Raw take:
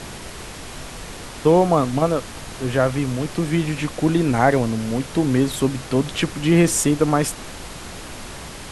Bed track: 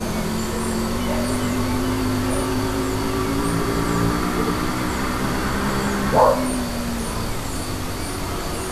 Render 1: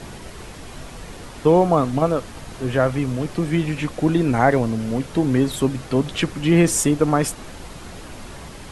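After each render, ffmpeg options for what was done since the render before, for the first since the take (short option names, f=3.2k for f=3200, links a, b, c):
-af "afftdn=nr=6:nf=-36"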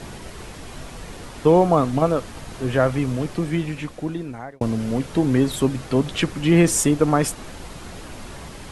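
-filter_complex "[0:a]asplit=2[a][b];[a]atrim=end=4.61,asetpts=PTS-STARTPTS,afade=t=out:st=3.17:d=1.44[c];[b]atrim=start=4.61,asetpts=PTS-STARTPTS,afade=t=in:d=0.004:c=hsin[d];[c][d]concat=n=2:v=0:a=1"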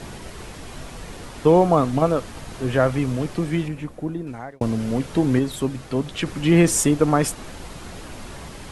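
-filter_complex "[0:a]asettb=1/sr,asplit=3[a][b][c];[a]atrim=end=3.684[d];[b]atrim=start=3.68:end=4.27,asetpts=PTS-STARTPTS,afade=t=in:d=0.004:c=qsin,afade=t=out:st=0.586:d=0.004:c=qsin,equalizer=f=4.2k:w=0.36:g=-10[e];[c]atrim=start=4.266[f];[d][e]acrossfade=d=0.004:c1=hsin:c2=qsin[g];[g][f]acrossfade=d=0.004:c1=qsin:c2=hsin,asplit=3[h][i][j];[h]atrim=end=5.392[k];[i]atrim=start=5.388:end=6.262,asetpts=PTS-STARTPTS,volume=-4dB[l];[j]atrim=start=6.258[m];[k][l]acrossfade=d=0.004:c1=hsin:c2=hsin[n];[n][m]acrossfade=d=0.004:c1=hsin:c2=hsin"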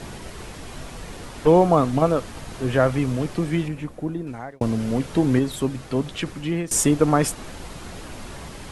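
-filter_complex "[0:a]asplit=3[a][b][c];[a]afade=t=out:st=0.9:d=0.02[d];[b]aeval=exprs='clip(val(0),-1,0.0447)':c=same,afade=t=in:st=0.9:d=0.02,afade=t=out:st=1.46:d=0.02[e];[c]afade=t=in:st=1.46:d=0.02[f];[d][e][f]amix=inputs=3:normalize=0,asplit=2[g][h];[g]atrim=end=6.71,asetpts=PTS-STARTPTS,afade=t=out:st=6.07:d=0.64:silence=0.1[i];[h]atrim=start=6.71,asetpts=PTS-STARTPTS,afade=t=in:d=0.004:c=hsin:silence=0.1[j];[i][j]concat=n=2:v=0:a=1"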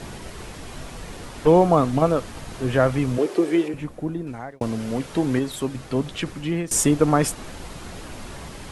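-filter_complex "[0:a]asettb=1/sr,asplit=3[a][b][c];[a]atrim=end=3.184[d];[b]atrim=start=3.18:end=3.74,asetpts=PTS-STARTPTS,afade=t=in:d=0.004:c=qsin,afade=t=out:st=0.556:d=0.004:c=qsin,highpass=f=390:t=q:w=4.1[e];[c]atrim=start=3.736[f];[d][e]acrossfade=d=0.004:c1=hsin:c2=qsin[g];[g][f]acrossfade=d=0.004:c1=qsin:c2=hsin,asettb=1/sr,asplit=3[h][i][j];[h]atrim=end=4.594[k];[i]atrim=start=4.59:end=5.75,asetpts=PTS-STARTPTS,afade=t=in:d=0.004:c=qsin,afade=t=out:st=1.156:d=0.004:c=qsin,lowshelf=f=260:g=-6[l];[j]atrim=start=5.746[m];[k][l]acrossfade=d=0.004:c1=hsin:c2=qsin[n];[n][m]acrossfade=d=0.004:c1=qsin:c2=hsin"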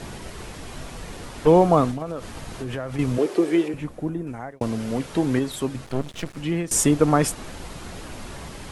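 -filter_complex "[0:a]asettb=1/sr,asplit=3[a][b][c];[a]atrim=end=1.914[d];[b]atrim=start=1.91:end=2.99,asetpts=PTS-STARTPTS,afade=t=in:d=0.004:c=qsin,afade=t=out:st=1.076:d=0.004:c=qsin,acompressor=threshold=-26dB:ratio=6:attack=3.2:release=140:knee=1:detection=peak[e];[c]atrim=start=2.986[f];[d][e]acrossfade=d=0.004:c1=hsin:c2=qsin[g];[g][f]acrossfade=d=0.004:c1=qsin:c2=hsin,asettb=1/sr,asplit=3[h][i][j];[h]atrim=end=4.094[k];[i]atrim=start=4.09:end=4.57,asetpts=PTS-STARTPTS,afade=t=in:d=0.004:c=qsin,afade=t=out:st=0.476:d=0.004:c=qsin,equalizer=f=4.1k:t=o:w=0.73:g=-7.5[l];[j]atrim=start=4.566[m];[k][l]acrossfade=d=0.004:c1=hsin:c2=qsin[n];[n][m]acrossfade=d=0.004:c1=qsin:c2=hsin,asettb=1/sr,asplit=3[o][p][q];[o]atrim=end=5.854[r];[p]atrim=start=5.85:end=6.37,asetpts=PTS-STARTPTS,afade=t=in:d=0.004:c=qsin,afade=t=out:st=0.516:d=0.004:c=qsin,aeval=exprs='max(val(0),0)':c=same[s];[q]atrim=start=6.366[t];[r][s]acrossfade=d=0.004:c1=hsin:c2=qsin[u];[u][t]acrossfade=d=0.004:c1=qsin:c2=hsin"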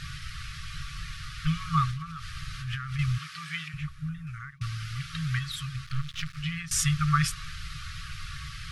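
-af "afftfilt=real='re*(1-between(b*sr/4096,170,1100))':imag='im*(1-between(b*sr/4096,170,1100))':win_size=4096:overlap=0.75,highshelf=f=6.2k:t=q:w=1.5:g=-6.5"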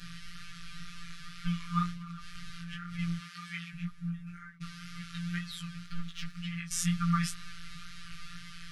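-af "afftfilt=real='hypot(re,im)*cos(PI*b)':imag='0':win_size=1024:overlap=0.75,flanger=delay=15.5:depth=3.8:speed=2"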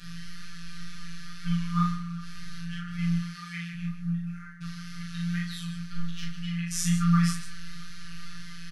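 -filter_complex "[0:a]asplit=2[a][b];[b]adelay=36,volume=-6.5dB[c];[a][c]amix=inputs=2:normalize=0,aecho=1:1:40.82|151.6:0.708|0.316"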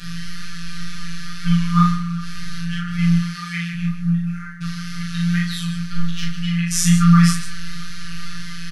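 -af "volume=11dB,alimiter=limit=-3dB:level=0:latency=1"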